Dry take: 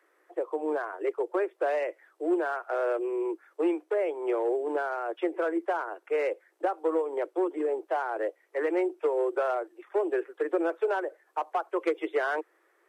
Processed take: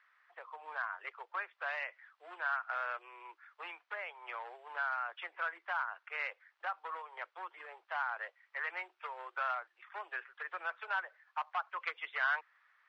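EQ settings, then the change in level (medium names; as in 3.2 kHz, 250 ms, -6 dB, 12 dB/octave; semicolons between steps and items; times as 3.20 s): high-pass 1.1 kHz 24 dB/octave; low-pass 4.5 kHz 24 dB/octave; +1.0 dB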